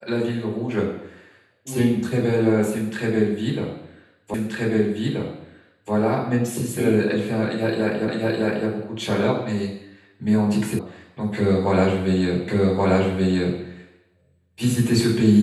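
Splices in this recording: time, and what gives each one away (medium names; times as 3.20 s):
4.34 s: repeat of the last 1.58 s
8.08 s: repeat of the last 0.61 s
10.79 s: sound stops dead
12.48 s: repeat of the last 1.13 s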